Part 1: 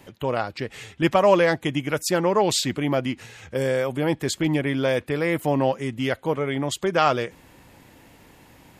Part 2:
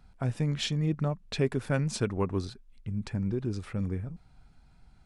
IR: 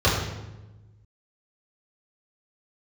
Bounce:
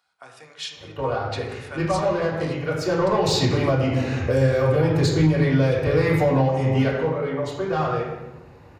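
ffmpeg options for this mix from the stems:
-filter_complex "[0:a]lowshelf=f=73:g=12,bandreject=f=3.3k:w=6.1,asplit=2[a][b];[b]highpass=f=720:p=1,volume=17dB,asoftclip=type=tanh:threshold=-4.5dB[c];[a][c]amix=inputs=2:normalize=0,lowpass=f=2.2k:p=1,volume=-6dB,adelay=750,volume=-5dB,afade=t=in:st=2.76:d=0.73:silence=0.266073,afade=t=out:st=6.5:d=0.59:silence=0.237137,asplit=2[d][e];[e]volume=-10dB[f];[1:a]highpass=1.1k,volume=-1.5dB,asplit=2[g][h];[h]volume=-18.5dB[i];[2:a]atrim=start_sample=2205[j];[f][i]amix=inputs=2:normalize=0[k];[k][j]afir=irnorm=-1:irlink=0[l];[d][g][l]amix=inputs=3:normalize=0,acrossover=split=170|3000[m][n][o];[n]acompressor=threshold=-21dB:ratio=2.5[p];[m][p][o]amix=inputs=3:normalize=0,alimiter=limit=-9.5dB:level=0:latency=1:release=381"

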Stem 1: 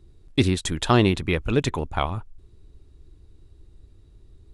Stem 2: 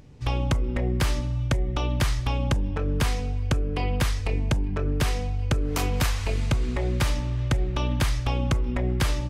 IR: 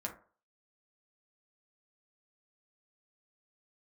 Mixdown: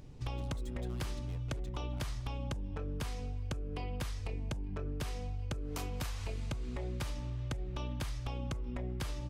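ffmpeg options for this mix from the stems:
-filter_complex "[0:a]aeval=exprs='(tanh(28.2*val(0)+0.65)-tanh(0.65))/28.2':c=same,alimiter=level_in=9dB:limit=-24dB:level=0:latency=1,volume=-9dB,volume=-7dB,asplit=2[a][b];[b]volume=-5.5dB[c];[1:a]volume=-3.5dB[d];[2:a]atrim=start_sample=2205[e];[c][e]afir=irnorm=-1:irlink=0[f];[a][d][f]amix=inputs=3:normalize=0,equalizer=f=1.9k:t=o:w=0.83:g=-3,acompressor=threshold=-36dB:ratio=5"

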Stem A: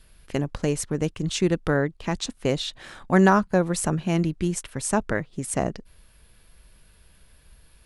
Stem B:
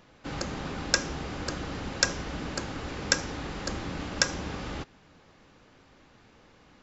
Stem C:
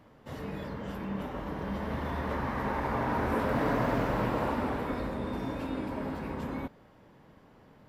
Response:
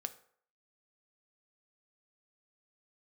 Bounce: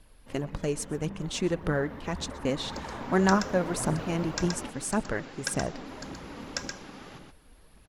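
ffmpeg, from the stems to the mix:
-filter_complex "[0:a]volume=-6dB,asplit=2[a][b];[b]volume=-21.5dB[c];[1:a]highpass=f=120:w=0.5412,highpass=f=120:w=1.3066,adelay=2350,volume=-10dB,asplit=2[d][e];[e]volume=-4.5dB[f];[2:a]volume=-9.5dB,asplit=3[g][h][i];[g]atrim=end=4.7,asetpts=PTS-STARTPTS,afade=t=out:st=4.696:d=0.004:c=hsin[j];[h]atrim=start=4.7:end=5.74,asetpts=PTS-STARTPTS,volume=0[k];[i]atrim=start=5.74,asetpts=PTS-STARTPTS,afade=t=in:d=0.004:c=hsin[l];[j][k][l]concat=n=3:v=0:a=1[m];[c][f]amix=inputs=2:normalize=0,aecho=0:1:125:1[n];[a][d][m][n]amix=inputs=4:normalize=0,aphaser=in_gain=1:out_gain=1:delay=4.4:decay=0.37:speed=1.8:type=triangular"

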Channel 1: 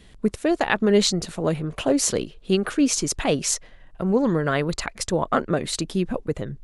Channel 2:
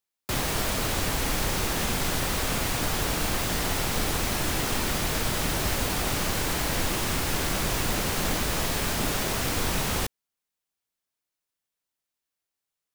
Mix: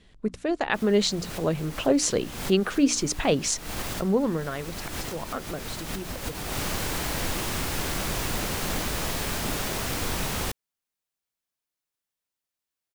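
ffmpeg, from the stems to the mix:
-filter_complex "[0:a]lowpass=7.4k,bandreject=f=60:t=h:w=6,bandreject=f=120:t=h:w=6,bandreject=f=180:t=h:w=6,bandreject=f=240:t=h:w=6,bandreject=f=300:t=h:w=6,dynaudnorm=f=140:g=9:m=7dB,volume=-6dB,afade=t=out:st=3.98:d=0.56:silence=0.298538,asplit=2[a][b];[1:a]adelay=450,volume=-2dB[c];[b]apad=whole_len=590686[d];[c][d]sidechaincompress=threshold=-47dB:ratio=3:attack=16:release=145[e];[a][e]amix=inputs=2:normalize=0"

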